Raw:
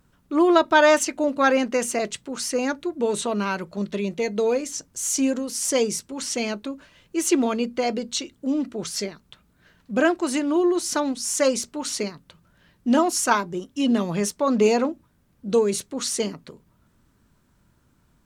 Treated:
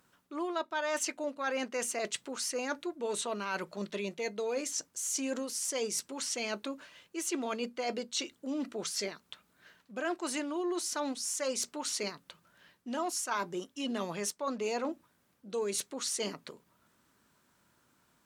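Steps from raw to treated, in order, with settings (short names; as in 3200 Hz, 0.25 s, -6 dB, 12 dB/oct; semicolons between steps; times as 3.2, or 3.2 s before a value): HPF 600 Hz 6 dB/oct; reverse; compressor 5:1, threshold -32 dBFS, peak gain reduction 17.5 dB; reverse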